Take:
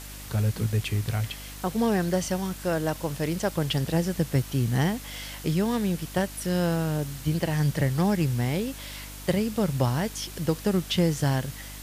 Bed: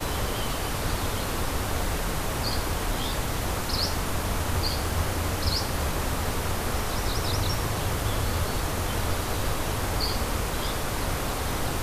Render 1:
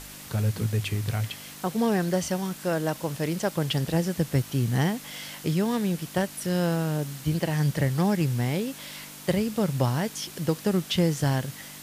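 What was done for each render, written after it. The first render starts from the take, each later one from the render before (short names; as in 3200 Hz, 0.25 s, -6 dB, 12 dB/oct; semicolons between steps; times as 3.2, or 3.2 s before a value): de-hum 50 Hz, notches 2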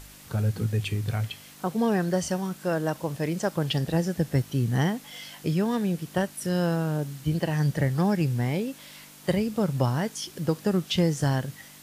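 noise print and reduce 6 dB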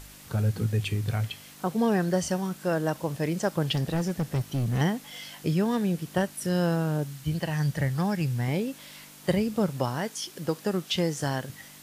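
3.75–4.81 overloaded stage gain 23 dB; 7.04–8.48 bell 350 Hz -6.5 dB 1.8 oct; 9.68–11.5 low shelf 170 Hz -11.5 dB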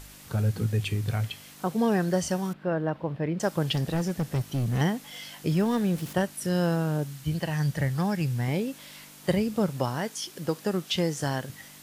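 2.53–3.4 air absorption 400 m; 5.51–6.13 zero-crossing step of -39 dBFS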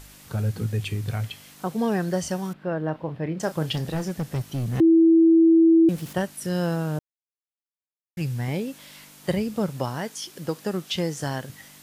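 2.78–4.09 doubler 32 ms -12.5 dB; 4.8–5.89 bleep 328 Hz -12 dBFS; 6.99–8.17 mute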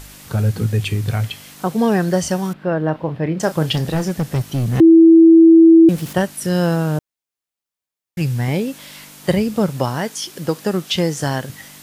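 gain +8 dB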